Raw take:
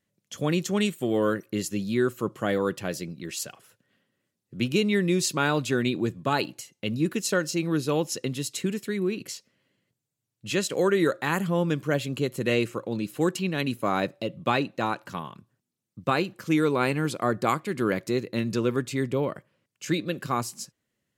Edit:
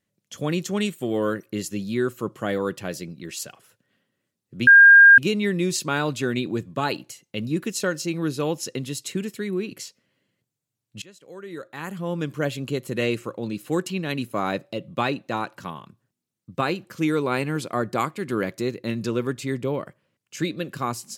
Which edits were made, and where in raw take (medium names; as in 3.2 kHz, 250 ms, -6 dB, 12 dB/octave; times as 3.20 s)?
4.67 s: add tone 1.61 kHz -6.5 dBFS 0.51 s
10.51–11.85 s: fade in quadratic, from -23.5 dB